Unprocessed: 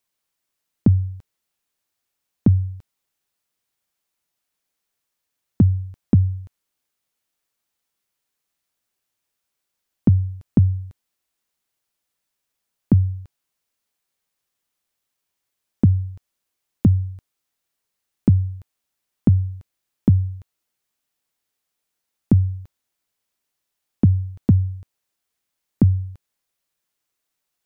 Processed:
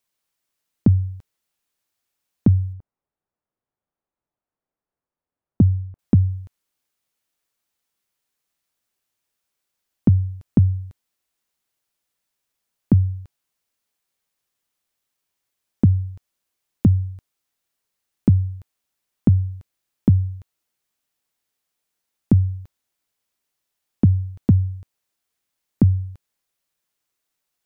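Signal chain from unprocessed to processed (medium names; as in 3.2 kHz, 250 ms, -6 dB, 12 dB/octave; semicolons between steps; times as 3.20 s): 2.73–5.99 s: low-pass 1 kHz 12 dB/octave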